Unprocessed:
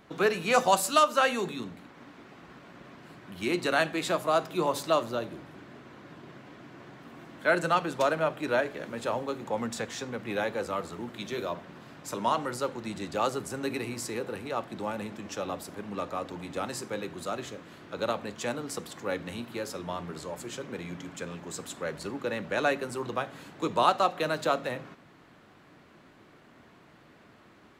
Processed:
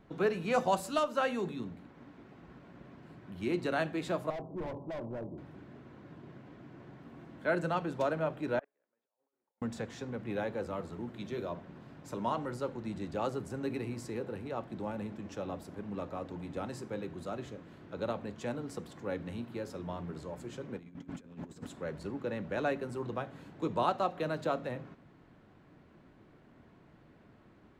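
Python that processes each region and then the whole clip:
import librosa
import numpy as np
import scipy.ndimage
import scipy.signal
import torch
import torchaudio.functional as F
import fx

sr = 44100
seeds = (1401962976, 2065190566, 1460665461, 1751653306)

y = fx.chain(x, sr, fx.steep_lowpass(hz=1000.0, slope=48),
    fx.overload_stage(gain_db=32.0), at=(4.3, 5.38))
y = fx.chain(y, sr, fx.over_compress(threshold_db=-36.0, ratio=-0.5),
    fx.gate_flip(shuts_db=-38.0, range_db=-40),
    fx.bandpass_edges(low_hz=520.0, high_hz=2400.0), at=(8.59, 9.62))
y = fx.chain(y, sr, fx.peak_eq(hz=250.0, db=9.0, octaves=0.32),
    fx.over_compress(threshold_db=-43.0, ratio=-0.5), at=(20.77, 21.67))
y = fx.tilt_eq(y, sr, slope=-2.5)
y = fx.notch(y, sr, hz=1200.0, q=21.0)
y = y * librosa.db_to_amplitude(-7.0)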